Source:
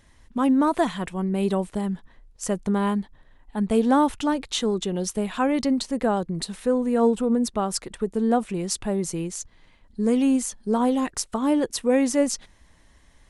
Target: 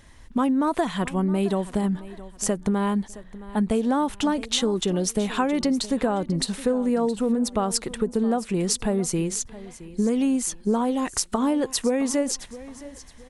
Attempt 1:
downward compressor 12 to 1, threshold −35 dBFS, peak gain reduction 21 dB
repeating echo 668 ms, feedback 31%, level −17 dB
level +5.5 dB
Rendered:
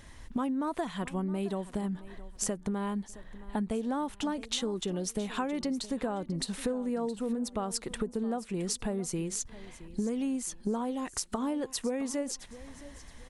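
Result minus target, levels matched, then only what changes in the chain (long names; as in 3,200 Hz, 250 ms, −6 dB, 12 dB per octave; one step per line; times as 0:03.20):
downward compressor: peak gain reduction +9.5 dB
change: downward compressor 12 to 1, threshold −24.5 dBFS, peak gain reduction 11 dB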